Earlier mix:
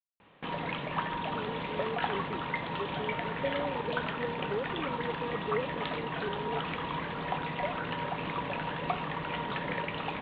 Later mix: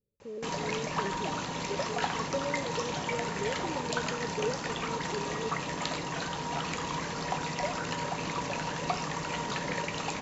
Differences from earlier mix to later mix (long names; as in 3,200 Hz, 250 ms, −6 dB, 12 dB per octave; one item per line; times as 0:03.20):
speech: entry −1.10 s
background: remove elliptic low-pass filter 3,500 Hz, stop band 40 dB